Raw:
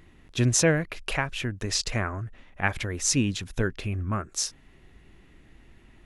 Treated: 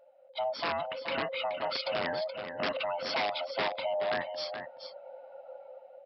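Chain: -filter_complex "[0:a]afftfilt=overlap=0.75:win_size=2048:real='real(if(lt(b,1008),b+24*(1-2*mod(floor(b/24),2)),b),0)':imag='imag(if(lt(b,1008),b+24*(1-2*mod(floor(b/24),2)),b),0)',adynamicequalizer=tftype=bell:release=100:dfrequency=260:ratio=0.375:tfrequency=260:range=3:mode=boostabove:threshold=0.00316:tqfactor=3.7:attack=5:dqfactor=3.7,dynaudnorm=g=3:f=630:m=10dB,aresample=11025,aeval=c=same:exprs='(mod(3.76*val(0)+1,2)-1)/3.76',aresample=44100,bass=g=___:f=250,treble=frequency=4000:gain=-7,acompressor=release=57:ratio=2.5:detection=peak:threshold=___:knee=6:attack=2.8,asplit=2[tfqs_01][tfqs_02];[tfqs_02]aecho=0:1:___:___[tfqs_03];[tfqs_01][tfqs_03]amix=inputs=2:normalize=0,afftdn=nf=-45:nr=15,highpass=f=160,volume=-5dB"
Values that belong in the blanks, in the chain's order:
-1, -26dB, 425, 0.398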